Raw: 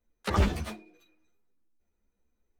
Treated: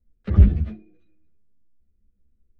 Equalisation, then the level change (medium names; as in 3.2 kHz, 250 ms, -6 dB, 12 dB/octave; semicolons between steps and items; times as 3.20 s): tone controls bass +15 dB, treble -6 dB; tape spacing loss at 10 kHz 31 dB; peaking EQ 930 Hz -13.5 dB 0.74 oct; -1.5 dB